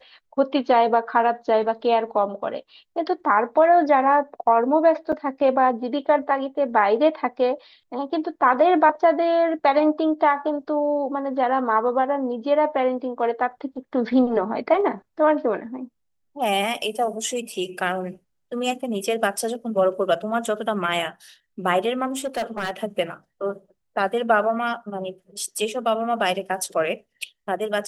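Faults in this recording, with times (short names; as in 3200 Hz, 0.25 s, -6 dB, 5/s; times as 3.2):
5.12–5.13 gap 5.9 ms
22.07–22.71 clipped -21.5 dBFS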